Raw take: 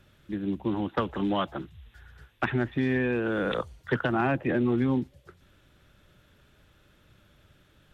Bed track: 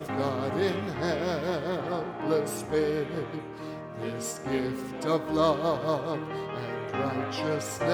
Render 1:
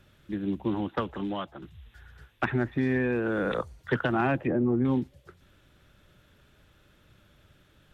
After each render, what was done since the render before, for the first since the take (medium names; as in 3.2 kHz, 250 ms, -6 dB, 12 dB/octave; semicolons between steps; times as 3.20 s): 0.70–1.62 s: fade out, to -10 dB; 2.45–3.79 s: peaking EQ 3.1 kHz -7.5 dB 0.56 oct; 4.42–4.85 s: low-pass that closes with the level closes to 910 Hz, closed at -23.5 dBFS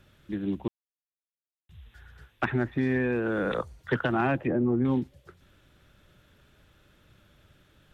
0.68–1.69 s: mute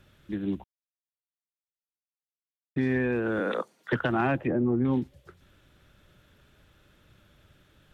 0.64–2.76 s: mute; 3.40–3.93 s: steep high-pass 200 Hz; 4.51–4.93 s: distance through air 110 m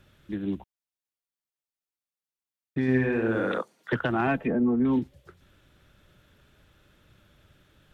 2.82–3.58 s: flutter echo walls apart 10.6 m, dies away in 0.71 s; 4.27–4.99 s: comb 4.5 ms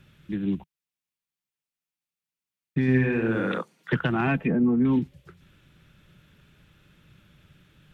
fifteen-band graphic EQ 160 Hz +10 dB, 630 Hz -4 dB, 2.5 kHz +5 dB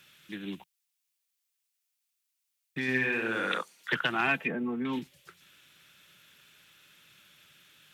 high-pass 920 Hz 6 dB/octave; treble shelf 2.7 kHz +11 dB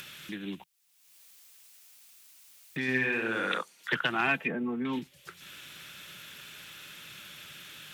upward compressor, threshold -35 dBFS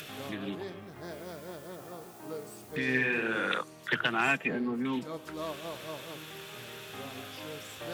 add bed track -14 dB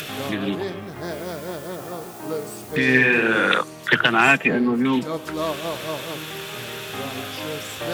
trim +12 dB; peak limiter -3 dBFS, peak gain reduction 1.5 dB